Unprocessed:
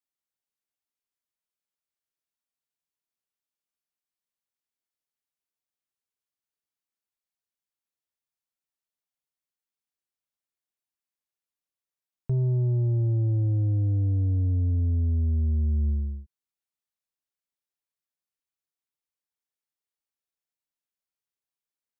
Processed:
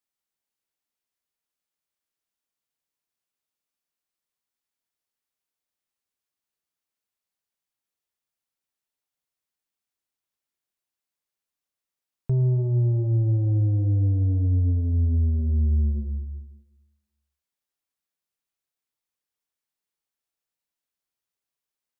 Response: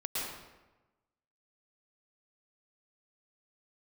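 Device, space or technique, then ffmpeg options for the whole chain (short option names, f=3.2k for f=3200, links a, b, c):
compressed reverb return: -filter_complex "[0:a]asplit=2[a][b];[1:a]atrim=start_sample=2205[c];[b][c]afir=irnorm=-1:irlink=0,acompressor=threshold=-21dB:ratio=6,volume=-10dB[d];[a][d]amix=inputs=2:normalize=0,volume=1dB"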